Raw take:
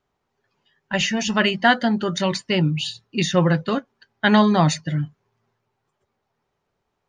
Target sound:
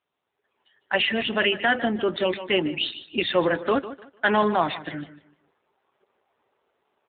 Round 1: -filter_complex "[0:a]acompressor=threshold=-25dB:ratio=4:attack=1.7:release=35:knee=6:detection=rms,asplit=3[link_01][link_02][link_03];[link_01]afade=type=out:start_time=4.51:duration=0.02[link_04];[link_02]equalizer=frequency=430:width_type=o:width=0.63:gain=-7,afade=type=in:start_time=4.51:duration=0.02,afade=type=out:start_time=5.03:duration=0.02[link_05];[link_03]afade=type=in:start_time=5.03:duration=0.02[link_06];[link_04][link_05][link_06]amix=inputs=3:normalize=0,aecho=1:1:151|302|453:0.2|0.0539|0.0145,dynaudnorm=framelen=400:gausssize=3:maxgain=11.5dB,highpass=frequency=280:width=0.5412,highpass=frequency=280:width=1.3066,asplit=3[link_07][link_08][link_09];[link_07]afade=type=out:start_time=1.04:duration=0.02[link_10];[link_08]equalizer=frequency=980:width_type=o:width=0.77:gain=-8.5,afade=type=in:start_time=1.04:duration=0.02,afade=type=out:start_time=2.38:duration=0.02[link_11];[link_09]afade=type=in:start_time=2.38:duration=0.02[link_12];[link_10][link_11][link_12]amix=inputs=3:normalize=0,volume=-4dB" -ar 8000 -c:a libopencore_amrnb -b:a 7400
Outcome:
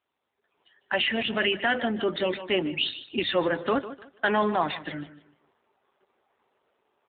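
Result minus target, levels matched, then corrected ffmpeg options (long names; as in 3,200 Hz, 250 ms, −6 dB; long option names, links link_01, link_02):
downward compressor: peak gain reduction +5 dB
-filter_complex "[0:a]acompressor=threshold=-18dB:ratio=4:attack=1.7:release=35:knee=6:detection=rms,asplit=3[link_01][link_02][link_03];[link_01]afade=type=out:start_time=4.51:duration=0.02[link_04];[link_02]equalizer=frequency=430:width_type=o:width=0.63:gain=-7,afade=type=in:start_time=4.51:duration=0.02,afade=type=out:start_time=5.03:duration=0.02[link_05];[link_03]afade=type=in:start_time=5.03:duration=0.02[link_06];[link_04][link_05][link_06]amix=inputs=3:normalize=0,aecho=1:1:151|302|453:0.2|0.0539|0.0145,dynaudnorm=framelen=400:gausssize=3:maxgain=11.5dB,highpass=frequency=280:width=0.5412,highpass=frequency=280:width=1.3066,asplit=3[link_07][link_08][link_09];[link_07]afade=type=out:start_time=1.04:duration=0.02[link_10];[link_08]equalizer=frequency=980:width_type=o:width=0.77:gain=-8.5,afade=type=in:start_time=1.04:duration=0.02,afade=type=out:start_time=2.38:duration=0.02[link_11];[link_09]afade=type=in:start_time=2.38:duration=0.02[link_12];[link_10][link_11][link_12]amix=inputs=3:normalize=0,volume=-4dB" -ar 8000 -c:a libopencore_amrnb -b:a 7400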